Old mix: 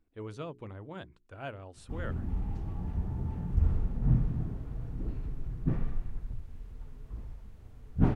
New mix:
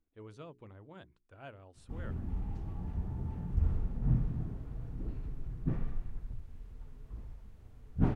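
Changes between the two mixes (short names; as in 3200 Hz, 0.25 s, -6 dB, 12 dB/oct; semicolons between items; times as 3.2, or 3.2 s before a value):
speech -8.5 dB; background -3.5 dB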